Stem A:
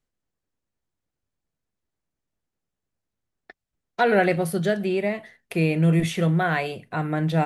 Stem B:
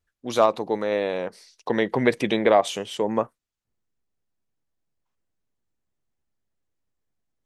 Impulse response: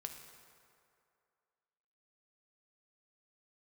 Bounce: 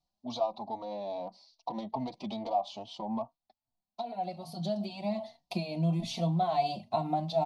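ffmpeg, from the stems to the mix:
-filter_complex "[0:a]acompressor=threshold=-26dB:ratio=5,bandreject=frequency=50:width_type=h:width=6,bandreject=frequency=100:width_type=h:width=6,bandreject=frequency=150:width_type=h:width=6,volume=-2dB[link_01];[1:a]acompressor=threshold=-23dB:ratio=4,asoftclip=type=tanh:threshold=-19dB,adynamicsmooth=sensitivity=1.5:basefreq=3900,volume=-7.5dB,asplit=2[link_02][link_03];[link_03]apad=whole_len=328837[link_04];[link_01][link_04]sidechaincompress=threshold=-59dB:ratio=3:attack=12:release=1030[link_05];[link_05][link_02]amix=inputs=2:normalize=0,firequalizer=gain_entry='entry(130,0);entry(220,6);entry(450,-12);entry(660,14);entry(970,9);entry(1600,-23);entry(2300,-6);entry(4300,13);entry(7400,-3);entry(11000,-7)':delay=0.05:min_phase=1,asplit=2[link_06][link_07];[link_07]adelay=3.8,afreqshift=2.4[link_08];[link_06][link_08]amix=inputs=2:normalize=1"

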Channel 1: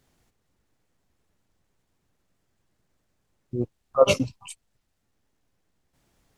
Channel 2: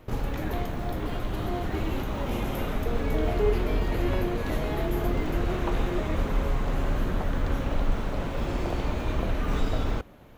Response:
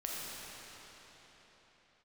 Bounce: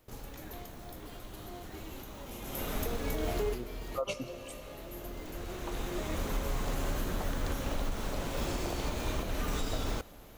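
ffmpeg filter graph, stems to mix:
-filter_complex "[0:a]equalizer=frequency=100:width=0.4:gain=-6,volume=-10dB,asplit=3[link_01][link_02][link_03];[link_02]volume=-13.5dB[link_04];[1:a]bass=frequency=250:gain=-3,treble=frequency=4000:gain=14,volume=-3.5dB,afade=type=in:start_time=2.4:duration=0.43:silence=0.281838,asplit=2[link_05][link_06];[link_06]volume=-24dB[link_07];[link_03]apad=whole_len=457532[link_08];[link_05][link_08]sidechaincompress=threshold=-49dB:ratio=12:attack=40:release=1410[link_09];[2:a]atrim=start_sample=2205[link_10];[link_04][link_07]amix=inputs=2:normalize=0[link_11];[link_11][link_10]afir=irnorm=-1:irlink=0[link_12];[link_01][link_09][link_12]amix=inputs=3:normalize=0,alimiter=limit=-23dB:level=0:latency=1:release=183"

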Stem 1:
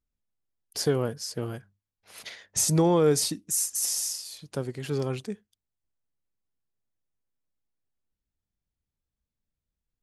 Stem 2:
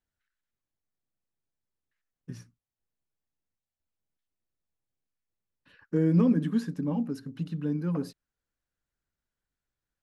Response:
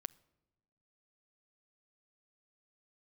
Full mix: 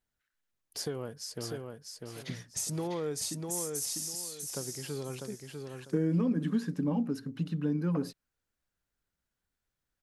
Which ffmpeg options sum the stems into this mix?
-filter_complex "[0:a]acompressor=threshold=-28dB:ratio=2.5,volume=-5.5dB,asplit=2[link_01][link_02];[link_02]volume=-4.5dB[link_03];[1:a]volume=2dB[link_04];[link_03]aecho=0:1:648|1296|1944|2592:1|0.26|0.0676|0.0176[link_05];[link_01][link_04][link_05]amix=inputs=3:normalize=0,lowshelf=frequency=170:gain=-3,acompressor=threshold=-25dB:ratio=6"

